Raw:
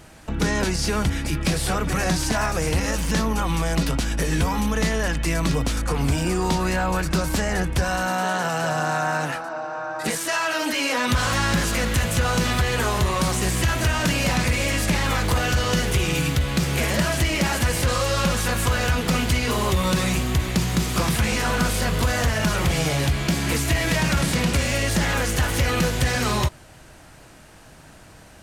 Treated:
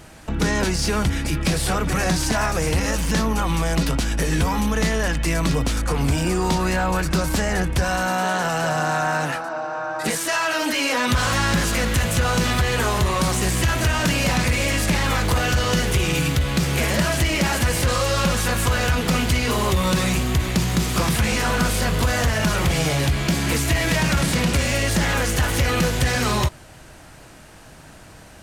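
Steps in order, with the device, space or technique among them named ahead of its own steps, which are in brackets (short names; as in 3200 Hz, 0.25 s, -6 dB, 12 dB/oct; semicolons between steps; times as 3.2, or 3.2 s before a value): parallel distortion (in parallel at -9 dB: hard clip -25 dBFS, distortion -7 dB)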